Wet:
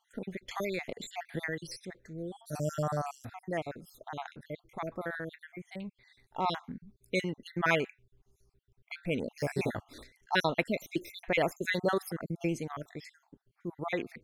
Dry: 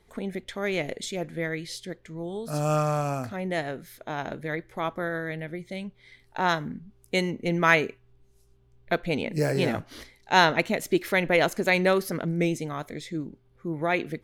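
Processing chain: random spectral dropouts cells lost 54%; 0.51–1.82 three-band squash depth 100%; gain -4.5 dB

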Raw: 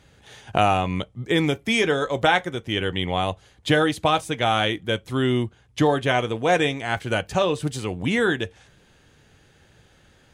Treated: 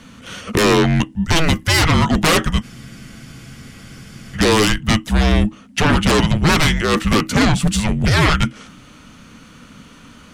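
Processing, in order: sine folder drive 15 dB, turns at -4.5 dBFS; frequency shift -320 Hz; spectral freeze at 2.64, 1.72 s; gain -5.5 dB

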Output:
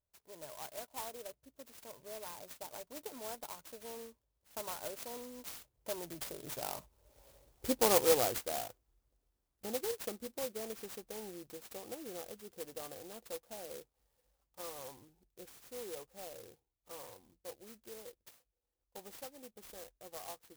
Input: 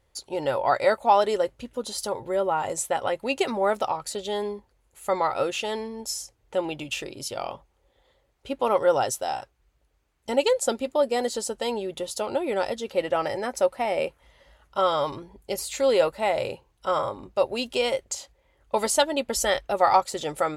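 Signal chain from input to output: sample sorter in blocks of 8 samples; Doppler pass-by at 7.49, 35 m/s, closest 12 m; in parallel at -0.5 dB: compressor, threshold -46 dBFS, peak gain reduction 23 dB; on the sum: clock jitter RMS 0.14 ms; gain -2 dB

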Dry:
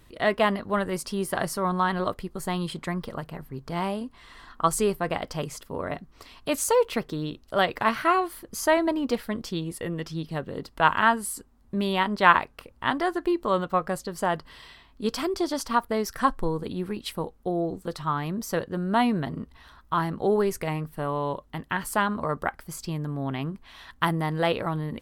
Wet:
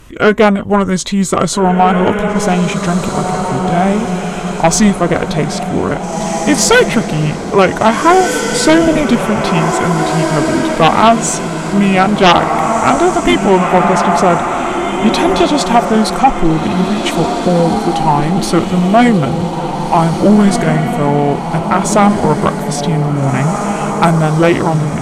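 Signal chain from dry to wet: formant shift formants -5 st; diffused feedback echo 1.773 s, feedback 49%, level -6 dB; sine folder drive 10 dB, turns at -3.5 dBFS; gain +2 dB

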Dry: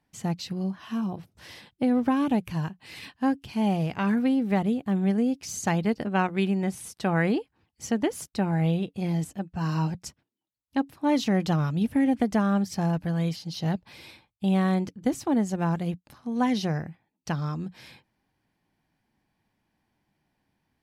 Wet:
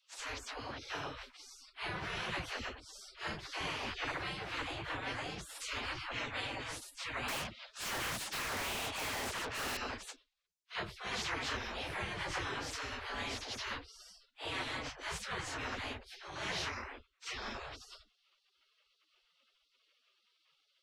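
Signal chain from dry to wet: phase scrambler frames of 0.1 s; LPF 2100 Hz 12 dB/oct; spectral gate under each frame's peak -30 dB weak; low shelf 340 Hz +7 dB; dispersion lows, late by 71 ms, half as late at 390 Hz; 7.28–9.77 overdrive pedal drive 32 dB, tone 1600 Hz, clips at -38.5 dBFS; spectral compressor 2:1; gain +6 dB

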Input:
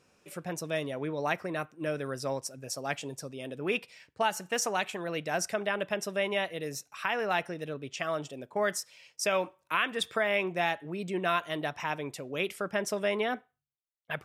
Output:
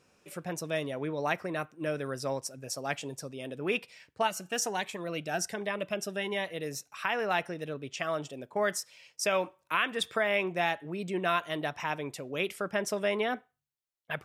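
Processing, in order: 4.27–6.47 cascading phaser rising 1.3 Hz

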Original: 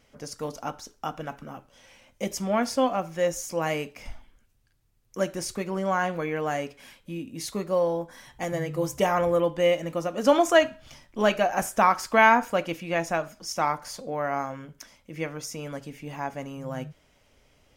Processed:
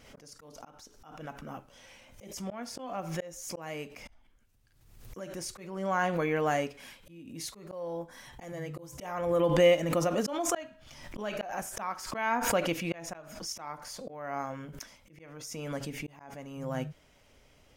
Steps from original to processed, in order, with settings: auto swell 0.608 s; backwards sustainer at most 58 dB/s

